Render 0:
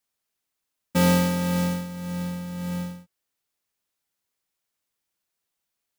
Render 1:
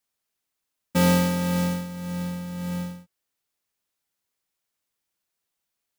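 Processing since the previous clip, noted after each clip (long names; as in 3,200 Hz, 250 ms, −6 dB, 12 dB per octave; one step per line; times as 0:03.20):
no processing that can be heard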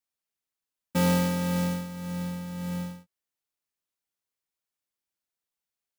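leveller curve on the samples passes 1
level −6.5 dB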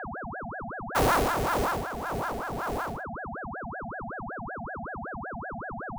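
steady tone 460 Hz −33 dBFS
ring modulator whose carrier an LFO sweeps 720 Hz, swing 70%, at 5.3 Hz
level +2.5 dB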